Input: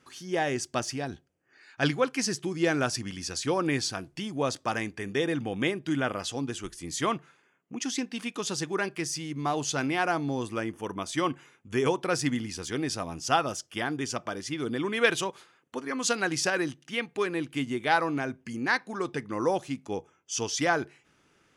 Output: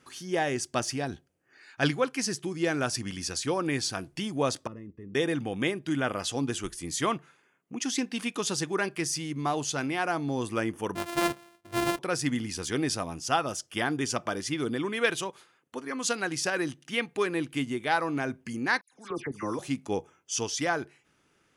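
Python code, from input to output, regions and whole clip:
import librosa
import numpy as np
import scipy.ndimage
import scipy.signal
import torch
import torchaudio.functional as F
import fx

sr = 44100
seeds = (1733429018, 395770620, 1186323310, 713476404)

y = fx.chain(x, sr, fx.moving_average(points=57),
    fx.level_steps(step_db=11), at=(4.67, 5.15))
y = fx.chain(y, sr, fx.sample_sort(block=128),
    fx.bass_treble(bass_db=-6, treble_db=-4), at=(10.95, 11.99))
y = fx.chain(y, sr, fx.level_steps(step_db=17),
    fx.dispersion(late='lows', ms=117.0, hz=2400.0), at=(18.81, 19.59))
y = fx.peak_eq(y, sr, hz=10000.0, db=4.5, octaves=0.43)
y = fx.rider(y, sr, range_db=3, speed_s=0.5)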